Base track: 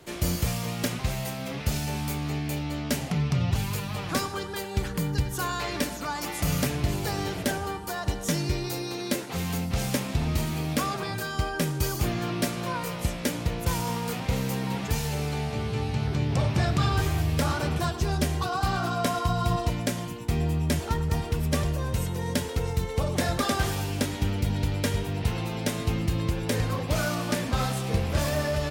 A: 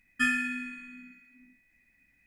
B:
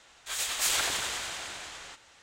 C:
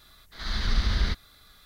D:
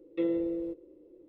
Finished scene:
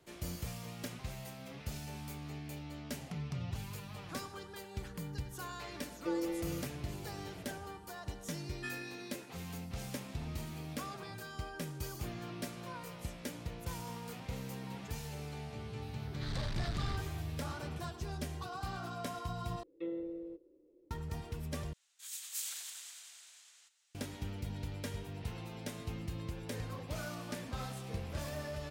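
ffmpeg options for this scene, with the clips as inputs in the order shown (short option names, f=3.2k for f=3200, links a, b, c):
-filter_complex "[4:a]asplit=2[a][b];[0:a]volume=-14.5dB[c];[1:a]highpass=250[d];[3:a]asoftclip=type=tanh:threshold=-28dB[e];[2:a]aderivative[f];[c]asplit=3[g][h][i];[g]atrim=end=19.634[j];[b]atrim=end=1.28,asetpts=PTS-STARTPTS,volume=-10.5dB[k];[h]atrim=start=20.906:end=21.734[l];[f]atrim=end=2.22,asetpts=PTS-STARTPTS,volume=-11.5dB[m];[i]atrim=start=23.946[n];[a]atrim=end=1.28,asetpts=PTS-STARTPTS,volume=-6.5dB,afade=t=in:d=0.004:c=hsin,afade=t=out:st=1.276:d=0.004:c=hsin,adelay=5880[o];[d]atrim=end=2.26,asetpts=PTS-STARTPTS,volume=-16.5dB,afade=t=in:d=0.004:c=hsin,afade=t=out:st=2.256:d=0.004:c=hsin,adelay=8430[p];[e]atrim=end=1.65,asetpts=PTS-STARTPTS,volume=-8dB,afade=t=in:d=0.004:c=hsin,afade=t=out:st=1.646:d=0.004:c=hsin,adelay=15820[q];[j][k]acrossfade=d=0.004:c1=hsin:c2=hsin[r];[r][l]acrossfade=d=0.004:c1=hsin:c2=hsin[s];[s][m]acrossfade=d=0.004:c1=hsin:c2=hsin[t];[t][n]acrossfade=d=0.004:c1=hsin:c2=hsin[u];[u][o][p][q]amix=inputs=4:normalize=0"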